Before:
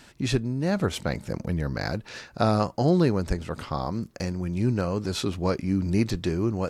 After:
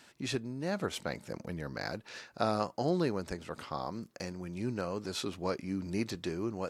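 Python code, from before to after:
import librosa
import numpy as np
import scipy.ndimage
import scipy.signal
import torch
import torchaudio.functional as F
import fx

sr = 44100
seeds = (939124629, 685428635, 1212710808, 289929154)

y = fx.highpass(x, sr, hz=300.0, slope=6)
y = F.gain(torch.from_numpy(y), -6.0).numpy()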